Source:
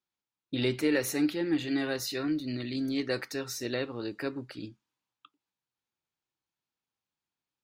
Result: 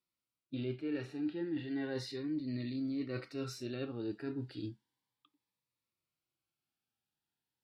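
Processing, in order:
treble cut that deepens with the level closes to 3,000 Hz, closed at −25.5 dBFS
harmonic and percussive parts rebalanced percussive −15 dB
reversed playback
downward compressor 5 to 1, threshold −40 dBFS, peak gain reduction 15.5 dB
reversed playback
parametric band 6,500 Hz −10 dB 0.25 octaves
phaser whose notches keep moving one way rising 0.34 Hz
level +5 dB

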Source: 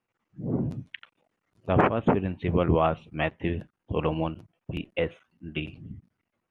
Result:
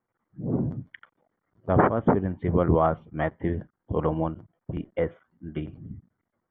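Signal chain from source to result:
Savitzky-Golay smoothing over 41 samples
level +1.5 dB

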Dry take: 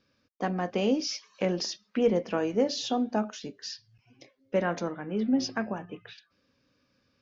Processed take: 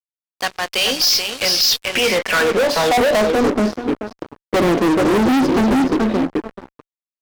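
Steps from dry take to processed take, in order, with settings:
tape delay 432 ms, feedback 21%, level −6 dB, low-pass 3,900 Hz
band-pass filter sweep 4,300 Hz → 330 Hz, 0:01.67–0:03.56
fuzz pedal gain 48 dB, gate −57 dBFS

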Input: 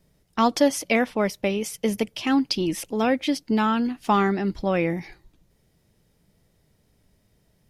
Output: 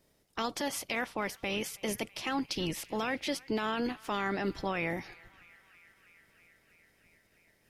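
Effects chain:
ceiling on every frequency bin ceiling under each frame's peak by 14 dB
brickwall limiter −16 dBFS, peak gain reduction 11 dB
feedback echo with a band-pass in the loop 325 ms, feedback 83%, band-pass 2,100 Hz, level −21 dB
level −7 dB

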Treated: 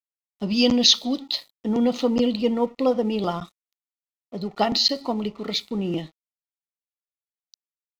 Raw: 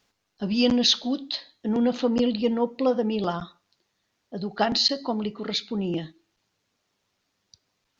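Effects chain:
0:00.47–0:02.14: high-shelf EQ 5,900 Hz +8.5 dB
dead-zone distortion −48.5 dBFS
Butterworth band-reject 1,600 Hz, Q 4.7
level +2 dB

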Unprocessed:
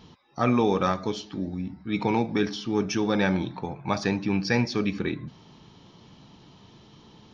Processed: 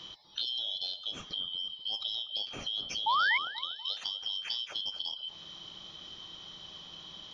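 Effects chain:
band-splitting scrambler in four parts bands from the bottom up 3412
dynamic equaliser 1,800 Hz, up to −6 dB, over −45 dBFS, Q 2.4
downward compressor 6 to 1, threshold −38 dBFS, peak gain reduction 18 dB
sound drawn into the spectrogram rise, 0:03.06–0:03.38, 840–2,300 Hz −31 dBFS
bucket-brigade delay 242 ms, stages 2,048, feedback 39%, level −9.5 dB
level +4 dB

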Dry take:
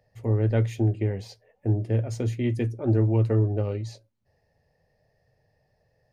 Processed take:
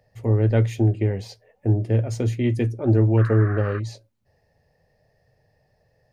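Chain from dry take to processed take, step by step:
0:03.17–0:03.78: noise in a band 1,100–1,800 Hz −40 dBFS
level +4 dB

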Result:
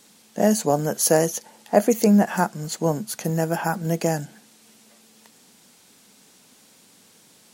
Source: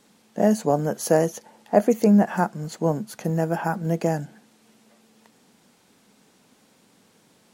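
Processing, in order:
high-shelf EQ 2,800 Hz +11 dB

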